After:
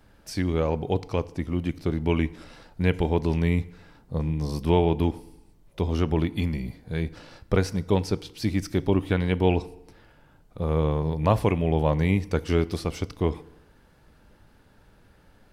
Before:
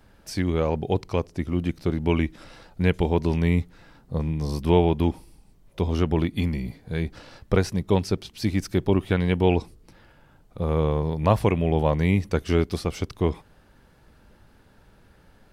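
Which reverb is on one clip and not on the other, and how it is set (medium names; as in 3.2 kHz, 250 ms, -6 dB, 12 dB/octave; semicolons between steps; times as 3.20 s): FDN reverb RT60 0.87 s, low-frequency decay 1×, high-frequency decay 0.75×, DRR 16 dB; trim -1.5 dB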